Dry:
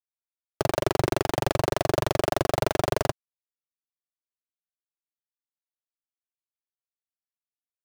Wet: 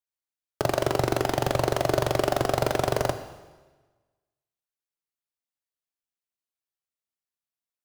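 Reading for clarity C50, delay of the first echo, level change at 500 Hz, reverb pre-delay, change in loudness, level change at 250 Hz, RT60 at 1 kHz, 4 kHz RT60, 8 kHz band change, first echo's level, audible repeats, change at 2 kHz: 11.0 dB, no echo audible, +1.0 dB, 6 ms, +1.0 dB, 0.0 dB, 1.3 s, 1.2 s, +0.5 dB, no echo audible, no echo audible, +0.5 dB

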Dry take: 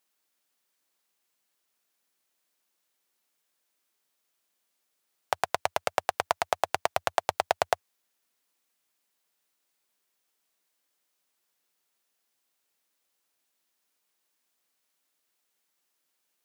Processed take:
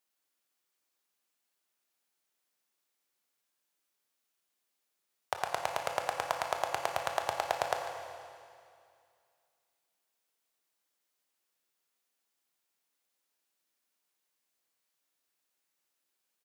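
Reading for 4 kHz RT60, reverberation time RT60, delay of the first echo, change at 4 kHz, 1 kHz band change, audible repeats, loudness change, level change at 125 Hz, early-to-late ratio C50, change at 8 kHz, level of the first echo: 2.3 s, 2.3 s, 147 ms, −4.5 dB, −4.5 dB, 1, −5.0 dB, −4.0 dB, 4.0 dB, −4.0 dB, −13.5 dB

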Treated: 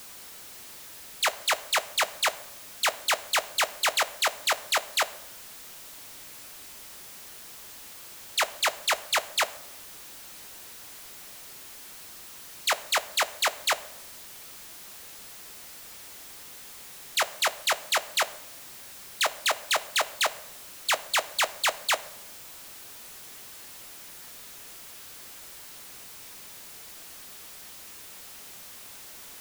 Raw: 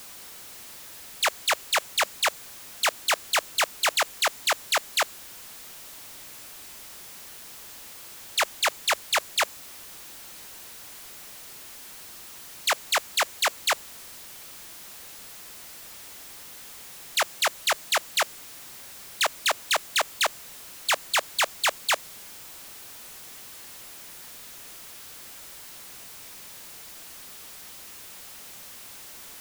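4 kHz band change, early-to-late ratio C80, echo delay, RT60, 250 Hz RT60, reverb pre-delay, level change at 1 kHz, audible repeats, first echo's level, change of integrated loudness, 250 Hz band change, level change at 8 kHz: −1.0 dB, 19.5 dB, no echo audible, 0.95 s, 1.1 s, 8 ms, −1.0 dB, no echo audible, no echo audible, −1.0 dB, −1.5 dB, −1.5 dB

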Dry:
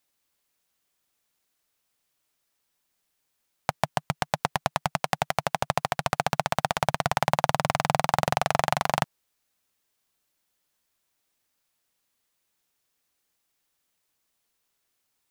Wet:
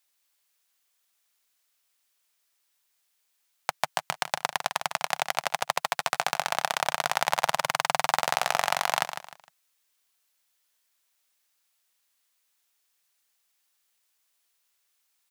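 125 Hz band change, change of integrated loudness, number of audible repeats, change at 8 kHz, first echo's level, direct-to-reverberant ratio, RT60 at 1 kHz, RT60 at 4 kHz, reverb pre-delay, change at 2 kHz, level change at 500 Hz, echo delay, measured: −16.0 dB, −0.5 dB, 3, +3.5 dB, −9.5 dB, no reverb audible, no reverb audible, no reverb audible, no reverb audible, +1.5 dB, −4.0 dB, 153 ms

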